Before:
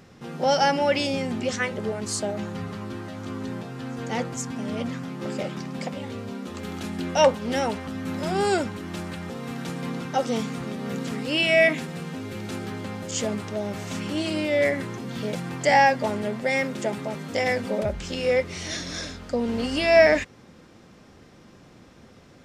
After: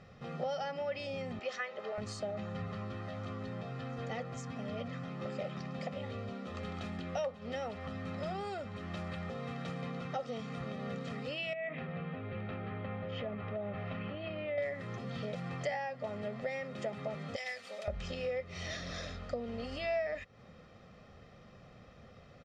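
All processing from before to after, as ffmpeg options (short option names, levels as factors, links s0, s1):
-filter_complex "[0:a]asettb=1/sr,asplit=3[s0][s1][s2];[s0]atrim=end=1.394[s3];[s1]atrim=start=1.39:end=1.98,asetpts=PTS-STARTPTS,afade=t=in:d=0.004:c=qsin,afade=t=out:st=0.586:d=0.004:c=qsin,highpass=540,equalizer=f=9800:w=1.9:g=-13.5[s4];[s2]atrim=start=1.976[s5];[s3][s4]acrossfade=d=0.004:c1=hsin:c2=qsin[s6];[s6][s5]acrossfade=d=0.004:c1=qsin:c2=hsin,asettb=1/sr,asplit=3[s7][s8][s9];[s7]atrim=end=11.534[s10];[s8]atrim=start=11.53:end=14.58,asetpts=PTS-STARTPTS,afade=t=in:d=0.004:c=qsin,afade=t=out:st=3.046:d=0.004:c=qsin,lowpass=f=2900:w=0.5412,lowpass=f=2900:w=1.3066,acompressor=threshold=0.0447:ratio=4:attack=3.2:release=140:knee=1:detection=peak[s11];[s9]atrim=start=14.576[s12];[s10][s11]acrossfade=d=0.004:c1=hsin:c2=qsin[s13];[s13][s12]acrossfade=d=0.004:c1=qsin:c2=hsin,asettb=1/sr,asplit=3[s14][s15][s16];[s14]atrim=end=17.364[s17];[s15]atrim=start=17.36:end=17.88,asetpts=PTS-STARTPTS,afade=t=in:d=0.004:c=qsin,afade=t=out:st=0.516:d=0.004:c=qsin,aderivative,acontrast=82[s18];[s16]atrim=start=17.876[s19];[s17][s18]acrossfade=d=0.004:c1=hsin:c2=qsin[s20];[s20][s19]acrossfade=d=0.004:c1=qsin:c2=hsin,acompressor=threshold=0.0316:ratio=8,lowpass=3900,aecho=1:1:1.6:0.65,volume=0.501"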